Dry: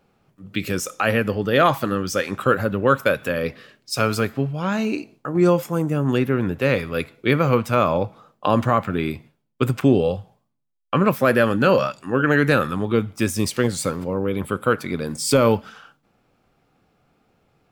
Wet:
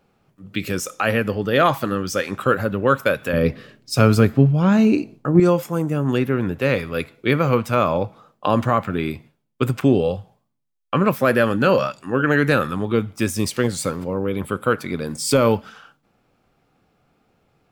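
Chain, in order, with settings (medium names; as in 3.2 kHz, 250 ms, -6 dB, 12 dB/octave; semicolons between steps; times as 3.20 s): 3.33–5.40 s: bass shelf 420 Hz +11.5 dB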